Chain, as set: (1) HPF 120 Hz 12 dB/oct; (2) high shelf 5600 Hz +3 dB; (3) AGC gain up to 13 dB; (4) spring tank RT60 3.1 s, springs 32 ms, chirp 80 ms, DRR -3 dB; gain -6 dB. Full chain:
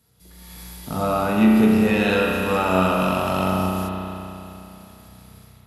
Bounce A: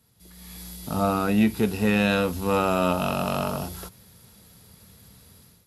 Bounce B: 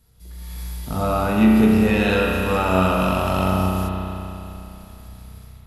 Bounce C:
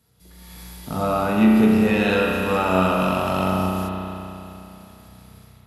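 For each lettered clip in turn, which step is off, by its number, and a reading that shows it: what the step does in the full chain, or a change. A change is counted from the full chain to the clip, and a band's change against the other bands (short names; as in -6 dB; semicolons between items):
4, 8 kHz band +4.0 dB; 1, 125 Hz band +3.5 dB; 2, 8 kHz band -2.0 dB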